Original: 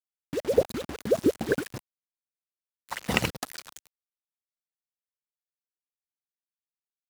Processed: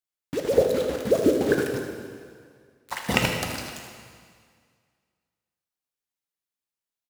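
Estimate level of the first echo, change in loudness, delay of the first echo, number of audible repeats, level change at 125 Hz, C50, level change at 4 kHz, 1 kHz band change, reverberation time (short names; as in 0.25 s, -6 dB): -11.0 dB, +4.0 dB, 78 ms, 1, +4.5 dB, 3.5 dB, +4.5 dB, +4.5 dB, 2.0 s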